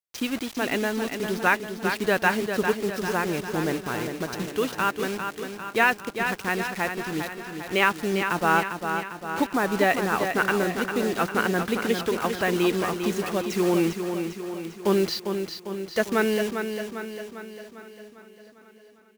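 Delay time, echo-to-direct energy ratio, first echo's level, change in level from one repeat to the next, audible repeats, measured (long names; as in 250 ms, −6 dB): 400 ms, −5.0 dB, −7.0 dB, repeats not evenly spaced, 11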